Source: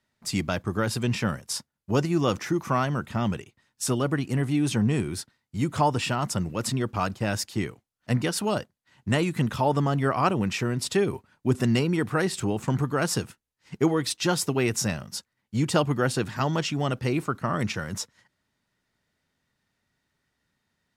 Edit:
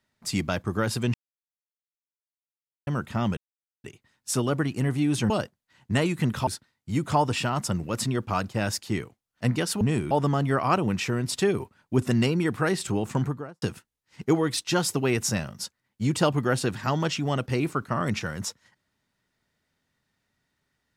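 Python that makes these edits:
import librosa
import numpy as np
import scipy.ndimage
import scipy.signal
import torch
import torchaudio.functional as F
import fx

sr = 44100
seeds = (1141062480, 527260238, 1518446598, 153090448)

y = fx.studio_fade_out(x, sr, start_s=12.66, length_s=0.49)
y = fx.edit(y, sr, fx.silence(start_s=1.14, length_s=1.73),
    fx.insert_silence(at_s=3.37, length_s=0.47),
    fx.swap(start_s=4.83, length_s=0.3, other_s=8.47, other_length_s=1.17), tone=tone)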